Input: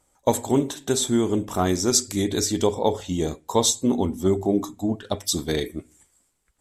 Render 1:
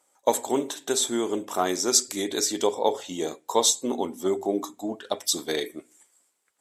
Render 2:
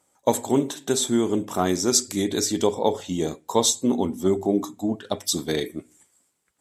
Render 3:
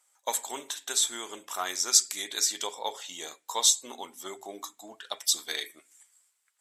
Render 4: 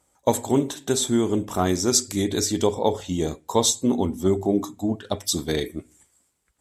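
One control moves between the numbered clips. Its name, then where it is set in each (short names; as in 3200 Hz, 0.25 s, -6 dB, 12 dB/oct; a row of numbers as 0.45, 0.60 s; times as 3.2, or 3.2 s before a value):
HPF, cutoff: 390, 140, 1300, 49 Hz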